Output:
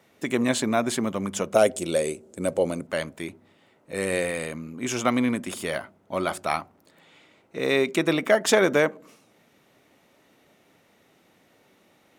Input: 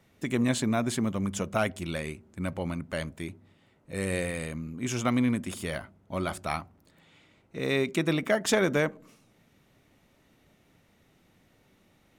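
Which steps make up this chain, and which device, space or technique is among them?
filter by subtraction (in parallel: low-pass filter 490 Hz 12 dB per octave + polarity inversion)
0:01.54–0:02.87: on the sum: octave-band graphic EQ 500/1,000/2,000/8,000 Hz +10/−6/−5/+11 dB
level +4.5 dB

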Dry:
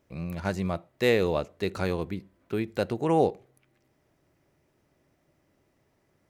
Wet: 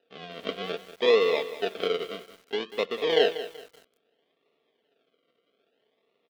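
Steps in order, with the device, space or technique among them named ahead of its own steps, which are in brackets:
circuit-bent sampling toy (sample-and-hold swept by an LFO 40×, swing 60% 0.61 Hz; loudspeaker in its box 450–4,100 Hz, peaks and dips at 450 Hz +7 dB, 930 Hz −10 dB, 1,600 Hz −4 dB, 3,200 Hz +9 dB)
comb filter 4.4 ms, depth 42%
feedback echo at a low word length 190 ms, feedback 35%, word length 7 bits, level −13 dB

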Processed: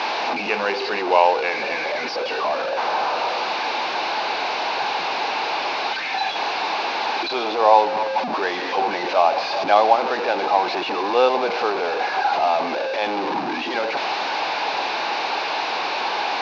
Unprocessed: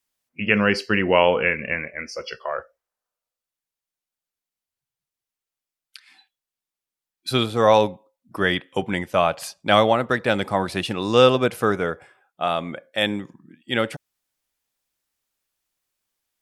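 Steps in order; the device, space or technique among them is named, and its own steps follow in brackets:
digital answering machine (band-pass filter 350–3,300 Hz; linear delta modulator 32 kbit/s, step −16.5 dBFS; loudspeaker in its box 400–4,000 Hz, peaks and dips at 540 Hz −4 dB, 830 Hz +8 dB, 1,300 Hz −7 dB, 1,900 Hz −10 dB, 3,200 Hz −10 dB)
level +2.5 dB

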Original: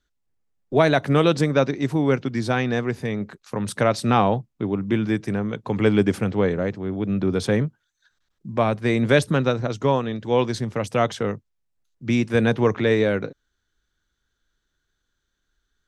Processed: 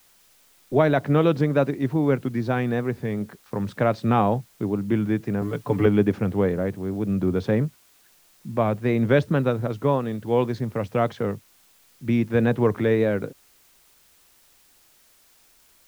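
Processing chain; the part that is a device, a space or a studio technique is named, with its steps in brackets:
cassette deck with a dirty head (head-to-tape spacing loss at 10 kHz 27 dB; tape wow and flutter; white noise bed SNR 34 dB)
0:05.41–0:05.86: comb filter 6.9 ms, depth 95%

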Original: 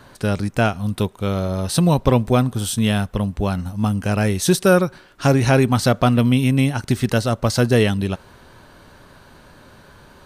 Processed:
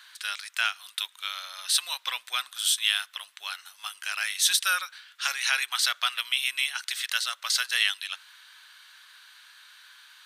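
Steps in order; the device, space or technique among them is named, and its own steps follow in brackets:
headphones lying on a table (high-pass filter 1,500 Hz 24 dB per octave; parametric band 3,500 Hz +6.5 dB 0.52 octaves)

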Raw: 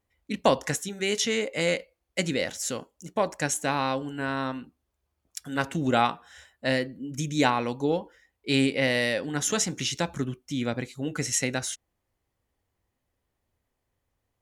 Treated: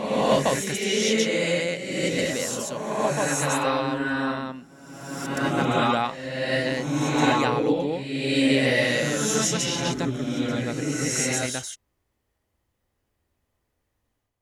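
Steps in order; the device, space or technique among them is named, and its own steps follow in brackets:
reverse reverb (reversed playback; convolution reverb RT60 1.6 s, pre-delay 114 ms, DRR −5.5 dB; reversed playback)
level −3 dB

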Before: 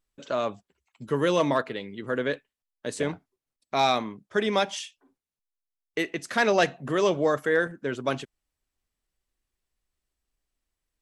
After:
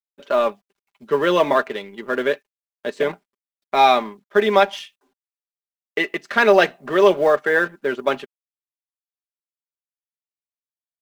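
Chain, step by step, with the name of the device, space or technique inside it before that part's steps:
phone line with mismatched companding (band-pass filter 300–3,300 Hz; mu-law and A-law mismatch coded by A)
comb filter 5 ms, depth 52%
level +8 dB

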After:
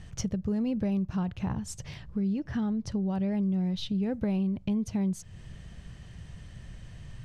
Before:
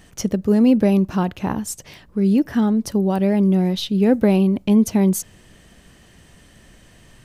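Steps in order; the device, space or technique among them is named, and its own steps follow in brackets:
0:02.22–0:03.32: low-pass filter 7,700 Hz 12 dB per octave
jukebox (low-pass filter 6,900 Hz 12 dB per octave; low shelf with overshoot 190 Hz +10.5 dB, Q 1.5; downward compressor 3 to 1, threshold −26 dBFS, peak gain reduction 12.5 dB)
level −4.5 dB

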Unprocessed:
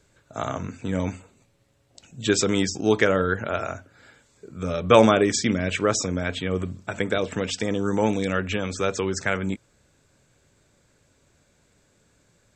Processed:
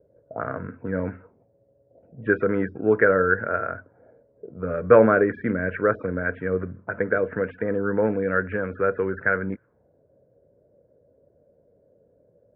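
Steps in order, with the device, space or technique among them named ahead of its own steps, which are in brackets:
envelope filter bass rig (envelope-controlled low-pass 580–1,500 Hz up, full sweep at −27 dBFS; loudspeaker in its box 67–2,000 Hz, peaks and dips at 480 Hz +7 dB, 830 Hz −8 dB, 1,200 Hz −8 dB)
level −2.5 dB

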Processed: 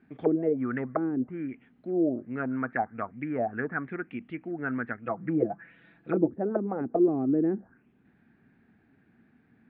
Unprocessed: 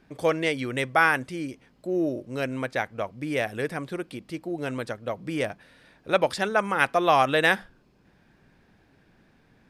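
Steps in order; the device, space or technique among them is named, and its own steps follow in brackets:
0:05.05–0:06.29: comb filter 6 ms, depth 88%
envelope filter bass rig (envelope-controlled low-pass 340–4,700 Hz down, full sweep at −19 dBFS; loudspeaker in its box 80–2,100 Hz, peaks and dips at 240 Hz +9 dB, 550 Hz −10 dB, 1,000 Hz −8 dB)
level −4 dB

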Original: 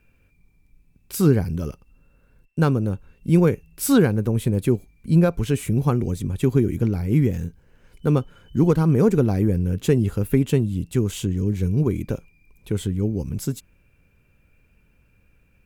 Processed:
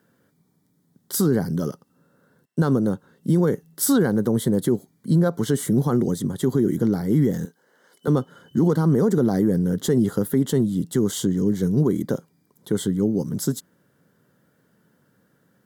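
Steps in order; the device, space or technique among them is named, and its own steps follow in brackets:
PA system with an anti-feedback notch (high-pass filter 150 Hz 24 dB per octave; Butterworth band-reject 2,500 Hz, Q 2.1; brickwall limiter −16 dBFS, peak gain reduction 9 dB)
0:07.45–0:08.08: Bessel high-pass filter 510 Hz, order 2
level +5 dB

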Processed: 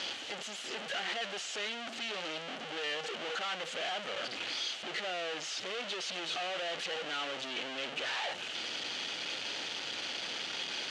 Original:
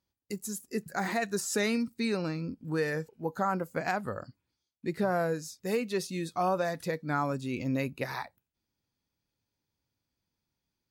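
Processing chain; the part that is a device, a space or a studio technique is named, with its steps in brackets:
home computer beeper (sign of each sample alone; loudspeaker in its box 570–5,700 Hz, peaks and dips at 1,000 Hz −8 dB, 3,000 Hz +9 dB, 5,200 Hz −5 dB)

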